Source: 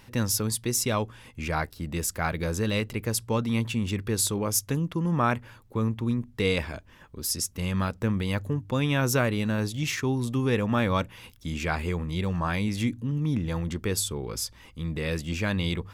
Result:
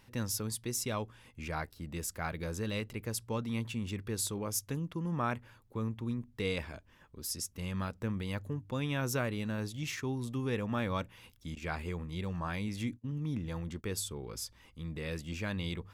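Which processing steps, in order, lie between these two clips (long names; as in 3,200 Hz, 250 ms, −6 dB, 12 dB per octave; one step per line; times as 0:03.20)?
0:11.55–0:13.84: noise gate −32 dBFS, range −26 dB
level −9 dB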